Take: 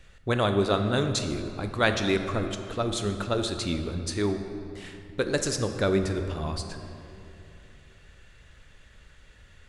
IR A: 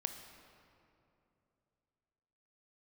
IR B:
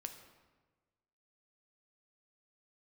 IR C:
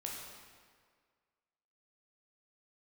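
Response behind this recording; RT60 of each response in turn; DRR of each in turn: A; 2.8, 1.3, 1.8 seconds; 6.5, 6.0, −2.5 decibels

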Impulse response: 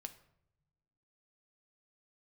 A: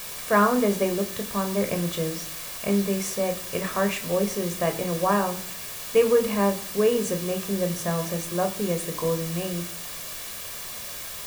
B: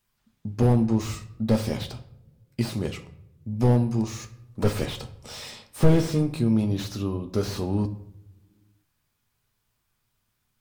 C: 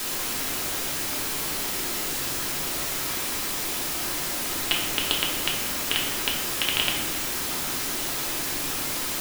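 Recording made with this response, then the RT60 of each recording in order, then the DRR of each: B; 0.55 s, non-exponential decay, 1.7 s; 6.0, 7.5, −2.5 decibels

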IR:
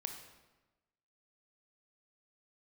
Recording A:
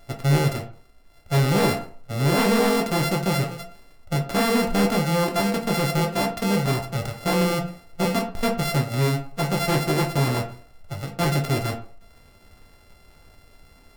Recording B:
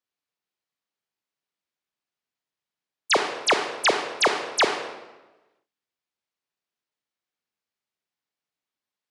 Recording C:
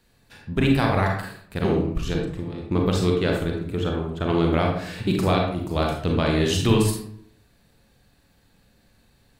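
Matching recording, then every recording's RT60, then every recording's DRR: B; 0.50, 1.1, 0.65 seconds; 1.5, 4.5, 0.0 decibels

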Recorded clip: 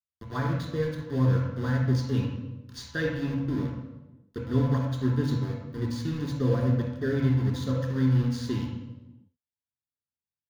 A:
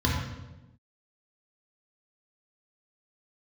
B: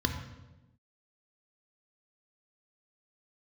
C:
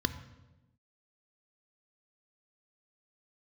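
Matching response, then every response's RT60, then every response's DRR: A; 1.0, 1.0, 1.0 seconds; −3.5, 4.5, 10.5 decibels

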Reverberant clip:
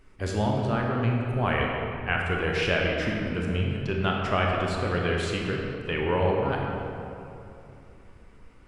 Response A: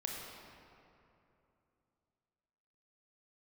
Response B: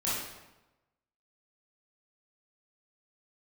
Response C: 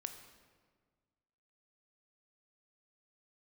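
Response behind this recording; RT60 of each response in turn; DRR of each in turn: A; 2.8, 1.0, 1.6 seconds; −1.5, −9.0, 6.5 decibels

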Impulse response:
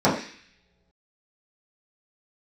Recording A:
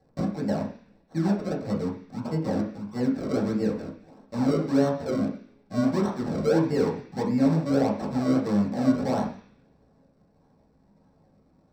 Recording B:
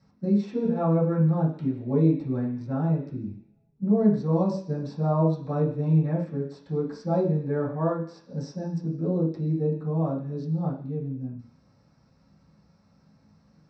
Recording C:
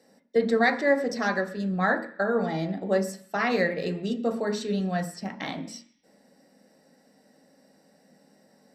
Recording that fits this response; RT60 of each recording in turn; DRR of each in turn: B; non-exponential decay, non-exponential decay, non-exponential decay; −5.5, −10.0, 4.5 decibels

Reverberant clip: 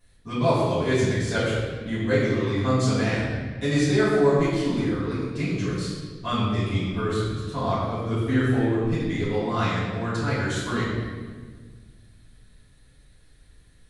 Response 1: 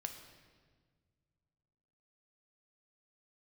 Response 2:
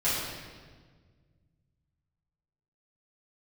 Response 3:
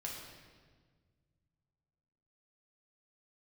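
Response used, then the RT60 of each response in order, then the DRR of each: 2; 1.6, 1.6, 1.6 seconds; 5.0, −13.0, −3.0 decibels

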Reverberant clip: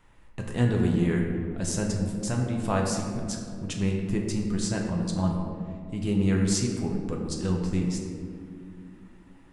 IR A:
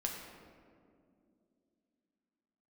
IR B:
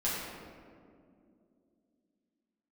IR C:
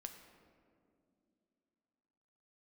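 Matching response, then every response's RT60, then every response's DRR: A; 2.5, 2.4, 2.7 seconds; −0.5, −9.0, 5.0 decibels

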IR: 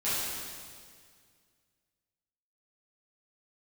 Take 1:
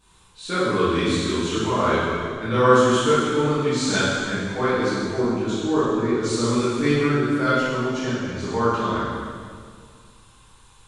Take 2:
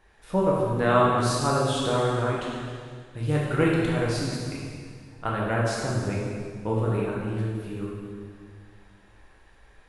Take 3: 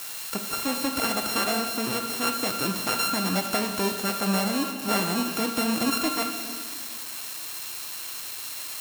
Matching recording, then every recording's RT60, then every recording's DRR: 1; 2.0, 2.0, 2.0 seconds; −13.5, −5.0, 4.5 decibels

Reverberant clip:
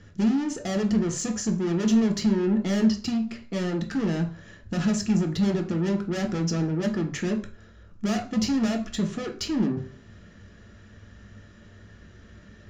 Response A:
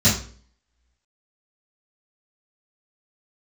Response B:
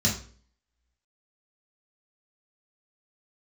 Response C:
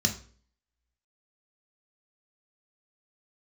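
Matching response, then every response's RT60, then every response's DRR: C; 0.45, 0.45, 0.45 seconds; −13.0, −4.5, 3.0 decibels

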